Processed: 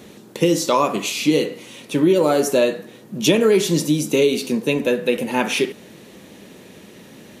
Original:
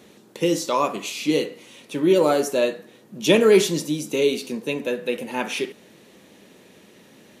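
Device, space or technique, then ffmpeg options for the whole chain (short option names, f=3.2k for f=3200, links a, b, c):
ASMR close-microphone chain: -af "lowshelf=f=190:g=6.5,acompressor=threshold=-18dB:ratio=6,highshelf=f=12k:g=3,volume=6dB"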